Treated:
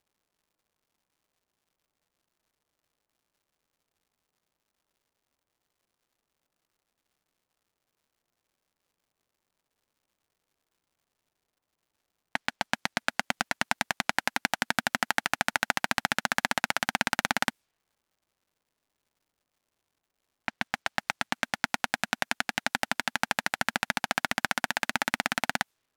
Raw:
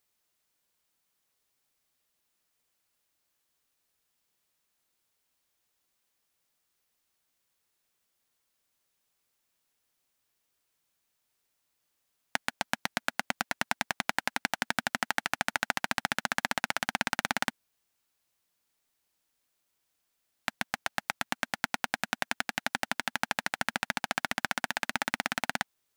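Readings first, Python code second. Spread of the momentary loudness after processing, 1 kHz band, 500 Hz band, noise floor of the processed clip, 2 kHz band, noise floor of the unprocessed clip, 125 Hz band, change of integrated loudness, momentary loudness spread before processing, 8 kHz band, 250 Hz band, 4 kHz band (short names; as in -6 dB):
5 LU, +3.0 dB, +3.0 dB, -85 dBFS, +3.0 dB, -79 dBFS, +3.0 dB, +3.0 dB, 4 LU, +2.5 dB, +3.0 dB, +3.0 dB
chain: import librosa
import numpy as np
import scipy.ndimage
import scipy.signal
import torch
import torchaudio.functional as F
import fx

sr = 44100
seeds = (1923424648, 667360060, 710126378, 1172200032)

y = fx.env_lowpass(x, sr, base_hz=950.0, full_db=-33.0)
y = fx.dmg_crackle(y, sr, seeds[0], per_s=230.0, level_db=-66.0)
y = F.gain(torch.from_numpy(y), 3.0).numpy()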